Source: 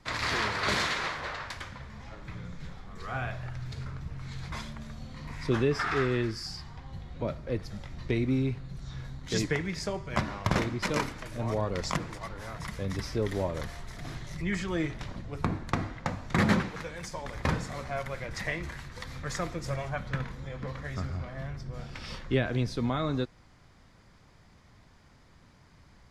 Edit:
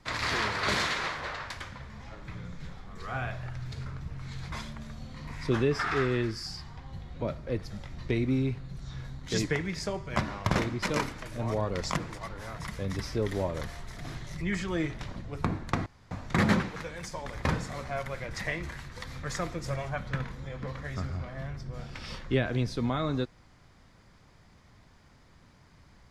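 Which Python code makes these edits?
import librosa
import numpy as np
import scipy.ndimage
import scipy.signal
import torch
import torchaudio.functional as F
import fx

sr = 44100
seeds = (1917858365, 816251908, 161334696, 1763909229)

y = fx.edit(x, sr, fx.room_tone_fill(start_s=15.86, length_s=0.25), tone=tone)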